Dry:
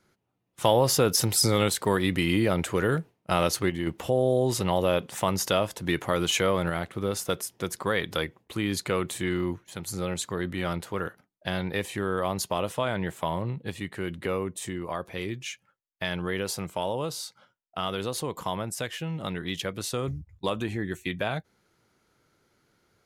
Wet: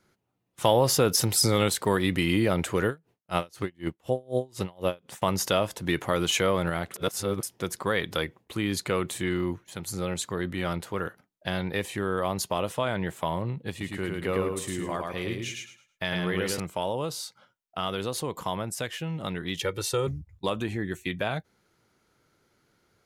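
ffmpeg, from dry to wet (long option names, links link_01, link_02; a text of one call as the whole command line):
ffmpeg -i in.wav -filter_complex "[0:a]asettb=1/sr,asplit=3[link_01][link_02][link_03];[link_01]atrim=end=2.874[link_04];[link_02]atrim=start=2.87:end=5.22,asetpts=PTS-STARTPTS,afade=type=in:duration=0.004:curve=qsin,afade=type=out:start_time=2.346:duration=0.004:curve=qsin,aeval=exprs='val(0)*pow(10,-32*(0.5-0.5*cos(2*PI*4*n/s))/20)':channel_layout=same[link_05];[link_03]atrim=start=5.216[link_06];[link_04][link_05]acrossfade=duration=0.004:curve1=hsin:curve2=qsin[link_07];[link_07][link_06]acrossfade=duration=0.004:curve1=qsin:curve2=hsin,asettb=1/sr,asplit=3[link_08][link_09][link_10];[link_08]atrim=end=13.704[link_11];[link_09]atrim=start=13.7:end=16.6,asetpts=PTS-STARTPTS,afade=type=in:duration=0.004:curve=qsin,afade=type=out:start_time=2.896:duration=0.004:curve=qsin,aecho=1:1:107|214|321|428:0.708|0.184|0.0479|0.0124,atrim=end_sample=127890[link_12];[link_10]atrim=start=16.596[link_13];[link_11][link_12]acrossfade=duration=0.004:curve1=hsin:curve2=qsin[link_14];[link_14][link_13]acrossfade=duration=0.004:curve1=qsin:curve2=hsin,asettb=1/sr,asplit=3[link_15][link_16][link_17];[link_15]atrim=end=19.604[link_18];[link_16]atrim=start=19.6:end=20.07,asetpts=PTS-STARTPTS,afade=type=in:duration=0.004:curve=qsin,afade=type=out:start_time=0.466:duration=0.004:curve=qsin,aecho=1:1:2.2:0.86,atrim=end_sample=20727[link_19];[link_17]atrim=start=20.066[link_20];[link_18][link_19]acrossfade=duration=0.004:curve1=hsin:curve2=qsin[link_21];[link_21][link_20]acrossfade=duration=0.004:curve1=qsin:curve2=hsin,asplit=3[link_22][link_23][link_24];[link_22]atrim=end=6.942[link_25];[link_23]atrim=start=6.938:end=7.432,asetpts=PTS-STARTPTS,areverse[link_26];[link_24]atrim=start=7.428[link_27];[link_25][link_26]acrossfade=duration=0.004:curve1=hsin:curve2=hsin[link_28];[link_28][link_27]acrossfade=duration=0.004:curve1=hsin:curve2=hsin" out.wav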